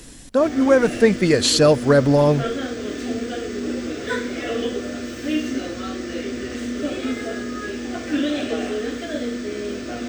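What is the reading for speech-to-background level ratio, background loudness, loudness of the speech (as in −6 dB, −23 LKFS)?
10.0 dB, −27.0 LKFS, −17.0 LKFS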